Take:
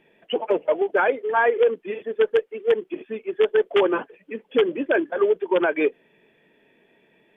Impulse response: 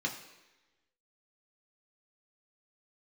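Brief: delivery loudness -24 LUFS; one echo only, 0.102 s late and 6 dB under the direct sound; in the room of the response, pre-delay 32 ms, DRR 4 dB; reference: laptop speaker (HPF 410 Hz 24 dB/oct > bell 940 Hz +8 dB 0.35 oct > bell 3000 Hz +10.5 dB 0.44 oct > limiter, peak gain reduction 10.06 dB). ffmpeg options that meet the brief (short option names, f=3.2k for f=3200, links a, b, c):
-filter_complex "[0:a]aecho=1:1:102:0.501,asplit=2[a][b];[1:a]atrim=start_sample=2205,adelay=32[c];[b][c]afir=irnorm=-1:irlink=0,volume=-8.5dB[d];[a][d]amix=inputs=2:normalize=0,highpass=f=410:w=0.5412,highpass=f=410:w=1.3066,equalizer=f=940:t=o:w=0.35:g=8,equalizer=f=3k:t=o:w=0.44:g=10.5,alimiter=limit=-14dB:level=0:latency=1"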